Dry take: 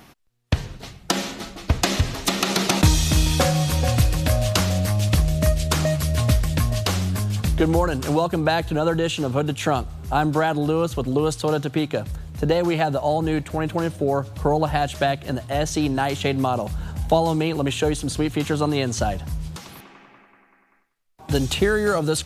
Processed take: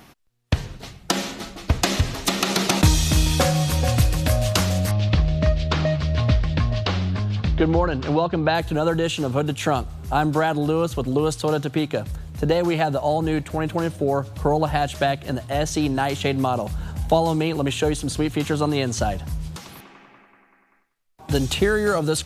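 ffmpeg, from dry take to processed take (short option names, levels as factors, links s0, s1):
-filter_complex "[0:a]asettb=1/sr,asplit=3[s0][s1][s2];[s0]atrim=end=4.914[s3];[s1]atrim=start=4.91:end=8.55,asetpts=PTS-STARTPTS,afade=t=in:d=0.004:c=qsin,afade=t=out:st=3.636:d=0.004:c=qsin,lowpass=f=4500:w=0.5412,lowpass=f=4500:w=1.3066[s4];[s2]atrim=start=8.546[s5];[s3][s4]acrossfade=d=0.004:c1=hsin:c2=qsin[s6];[s6][s5]acrossfade=d=0.004:c1=qsin:c2=hsin"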